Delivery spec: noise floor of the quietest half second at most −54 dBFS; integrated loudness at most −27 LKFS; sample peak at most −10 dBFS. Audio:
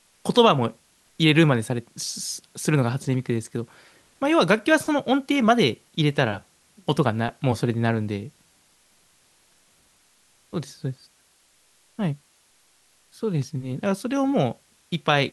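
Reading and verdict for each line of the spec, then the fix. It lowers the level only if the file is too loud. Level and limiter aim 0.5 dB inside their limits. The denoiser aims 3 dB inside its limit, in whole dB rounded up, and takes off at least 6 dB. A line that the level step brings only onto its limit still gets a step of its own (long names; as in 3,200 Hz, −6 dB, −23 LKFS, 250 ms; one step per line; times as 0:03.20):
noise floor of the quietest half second −61 dBFS: in spec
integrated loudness −23.5 LKFS: out of spec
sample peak −4.0 dBFS: out of spec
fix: level −4 dB
brickwall limiter −10.5 dBFS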